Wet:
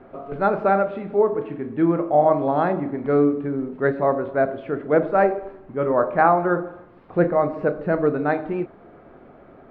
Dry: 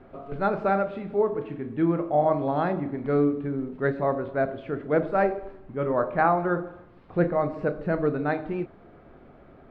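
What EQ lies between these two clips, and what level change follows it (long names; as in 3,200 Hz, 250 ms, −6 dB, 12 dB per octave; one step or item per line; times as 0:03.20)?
low-shelf EQ 150 Hz −10.5 dB
high-shelf EQ 3,200 Hz −11.5 dB
+6.5 dB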